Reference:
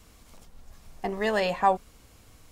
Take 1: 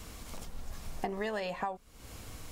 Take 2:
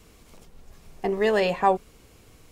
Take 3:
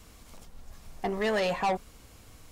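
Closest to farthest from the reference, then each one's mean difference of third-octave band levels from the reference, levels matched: 2, 3, 1; 2.0, 4.5, 11.5 dB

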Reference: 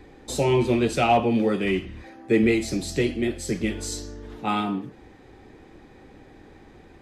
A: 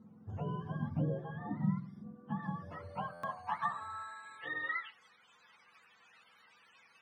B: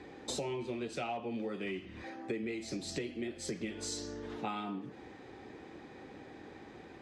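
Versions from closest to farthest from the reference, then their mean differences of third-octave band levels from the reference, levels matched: B, A; 7.5, 12.0 dB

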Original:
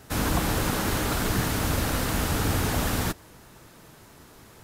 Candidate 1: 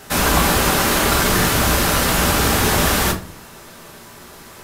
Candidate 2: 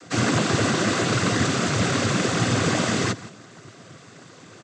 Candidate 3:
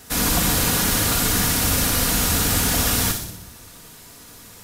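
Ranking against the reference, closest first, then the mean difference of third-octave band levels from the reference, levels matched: 1, 3, 2; 3.0, 4.5, 6.0 dB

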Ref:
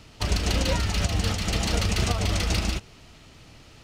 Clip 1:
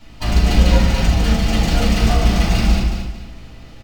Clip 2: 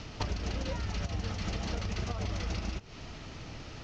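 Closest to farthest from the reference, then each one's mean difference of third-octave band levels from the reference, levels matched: 1, 2; 4.5, 7.5 dB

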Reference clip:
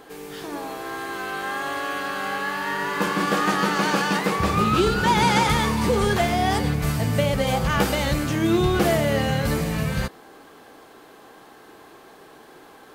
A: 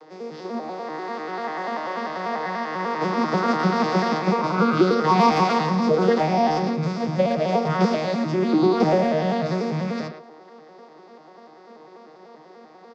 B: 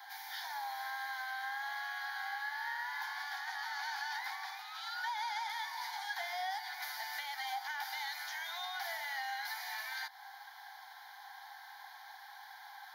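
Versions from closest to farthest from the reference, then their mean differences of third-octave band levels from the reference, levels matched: A, B; 10.0, 18.0 dB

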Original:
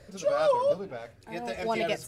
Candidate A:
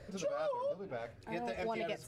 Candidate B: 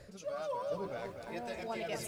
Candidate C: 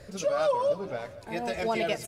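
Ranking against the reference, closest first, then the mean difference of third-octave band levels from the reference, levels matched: C, A, B; 3.0, 4.5, 6.5 dB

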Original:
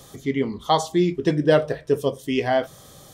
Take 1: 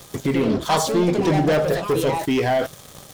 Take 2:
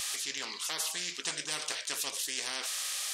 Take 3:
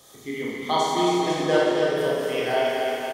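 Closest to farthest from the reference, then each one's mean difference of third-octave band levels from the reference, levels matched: 1, 3, 2; 8.5, 11.0, 17.5 dB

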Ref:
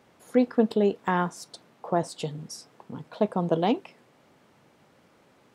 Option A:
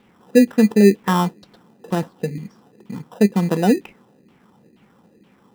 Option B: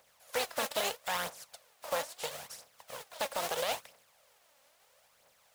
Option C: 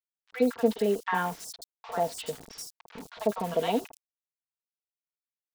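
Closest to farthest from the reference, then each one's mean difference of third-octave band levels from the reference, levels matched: A, C, B; 8.0, 10.5, 15.0 dB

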